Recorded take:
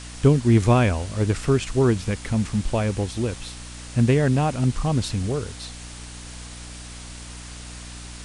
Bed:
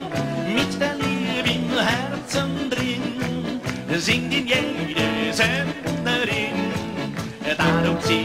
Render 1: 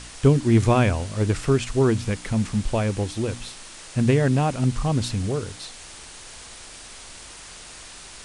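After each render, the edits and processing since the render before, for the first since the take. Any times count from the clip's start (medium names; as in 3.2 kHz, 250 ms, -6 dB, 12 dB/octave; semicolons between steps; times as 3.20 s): de-hum 60 Hz, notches 5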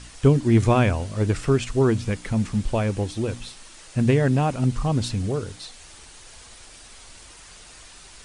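noise reduction 6 dB, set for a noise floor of -42 dBFS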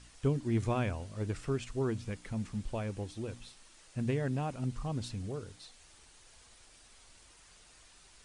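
trim -13.5 dB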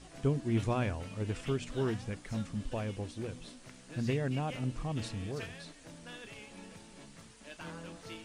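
add bed -26.5 dB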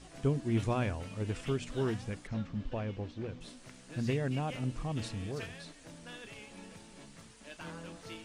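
2.27–3.41 s: distance through air 170 m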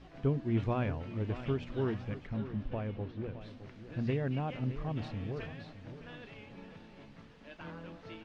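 distance through air 260 m; feedback delay 614 ms, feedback 39%, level -13 dB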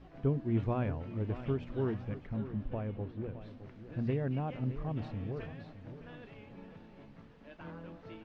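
treble shelf 2.1 kHz -9.5 dB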